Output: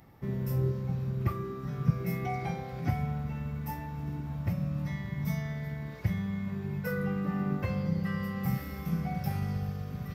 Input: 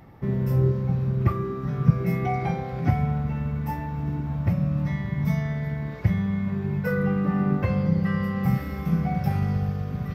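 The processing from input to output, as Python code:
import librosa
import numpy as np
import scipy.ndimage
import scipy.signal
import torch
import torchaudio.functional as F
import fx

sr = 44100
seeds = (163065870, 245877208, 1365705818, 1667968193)

y = fx.high_shelf(x, sr, hz=4000.0, db=11.5)
y = y * 10.0 ** (-8.0 / 20.0)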